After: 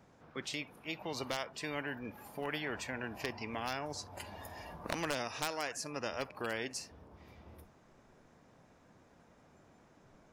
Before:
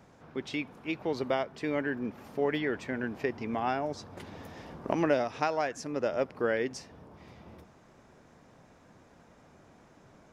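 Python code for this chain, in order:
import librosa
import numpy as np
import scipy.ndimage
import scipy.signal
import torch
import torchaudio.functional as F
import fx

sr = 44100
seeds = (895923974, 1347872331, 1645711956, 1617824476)

y = 10.0 ** (-18.0 / 20.0) * (np.abs((x / 10.0 ** (-18.0 / 20.0) + 3.0) % 4.0 - 2.0) - 1.0)
y = fx.noise_reduce_blind(y, sr, reduce_db=15)
y = fx.spectral_comp(y, sr, ratio=2.0)
y = F.gain(torch.from_numpy(y), 1.5).numpy()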